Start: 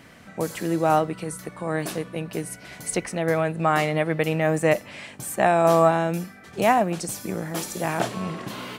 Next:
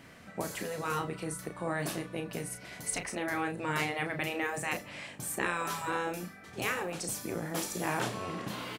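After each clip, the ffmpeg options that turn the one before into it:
-filter_complex "[0:a]afftfilt=real='re*lt(hypot(re,im),0.316)':imag='im*lt(hypot(re,im),0.316)':win_size=1024:overlap=0.75,asplit=2[s0][s1];[s1]adelay=34,volume=0.422[s2];[s0][s2]amix=inputs=2:normalize=0,volume=0.562"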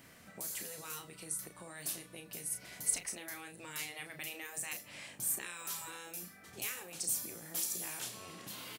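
-filter_complex "[0:a]aemphasis=mode=production:type=50kf,acrossover=split=2400[s0][s1];[s0]acompressor=threshold=0.00794:ratio=6[s2];[s2][s1]amix=inputs=2:normalize=0,volume=0.473"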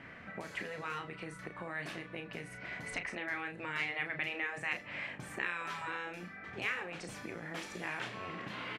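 -af "lowpass=f=2000:t=q:w=1.7,volume=2.11"

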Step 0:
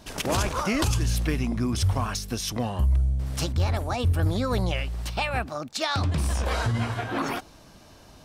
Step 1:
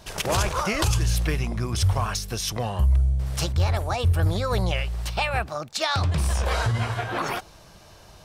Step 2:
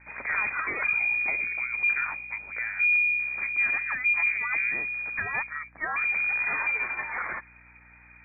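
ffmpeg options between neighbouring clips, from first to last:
-af "equalizer=f=260:t=o:w=0.41:g=-14,volume=1.33"
-af "lowpass=f=2100:t=q:w=0.5098,lowpass=f=2100:t=q:w=0.6013,lowpass=f=2100:t=q:w=0.9,lowpass=f=2100:t=q:w=2.563,afreqshift=-2500,aeval=exprs='val(0)+0.00224*(sin(2*PI*60*n/s)+sin(2*PI*2*60*n/s)/2+sin(2*PI*3*60*n/s)/3+sin(2*PI*4*60*n/s)/4+sin(2*PI*5*60*n/s)/5)':c=same,volume=0.596"

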